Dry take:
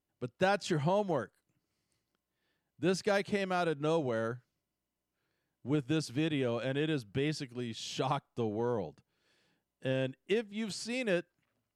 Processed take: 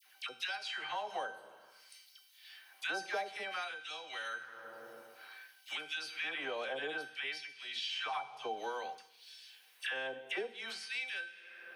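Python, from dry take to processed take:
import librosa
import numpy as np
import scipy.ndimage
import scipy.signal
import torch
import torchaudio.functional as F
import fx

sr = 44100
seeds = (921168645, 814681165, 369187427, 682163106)

y = fx.peak_eq(x, sr, hz=7400.0, db=-13.0, octaves=0.27)
y = fx.rev_fdn(y, sr, rt60_s=1.2, lf_ratio=1.05, hf_ratio=1.0, size_ms=43.0, drr_db=12.0)
y = fx.filter_lfo_highpass(y, sr, shape='sine', hz=0.56, low_hz=630.0, high_hz=3600.0, q=1.1)
y = fx.high_shelf(y, sr, hz=3500.0, db=-6.0)
y = fx.hum_notches(y, sr, base_hz=60, count=4)
y = fx.comb_fb(y, sr, f0_hz=780.0, decay_s=0.35, harmonics='all', damping=0.0, mix_pct=90)
y = fx.dispersion(y, sr, late='lows', ms=75.0, hz=1200.0)
y = fx.band_squash(y, sr, depth_pct=100)
y = F.gain(torch.from_numpy(y), 17.5).numpy()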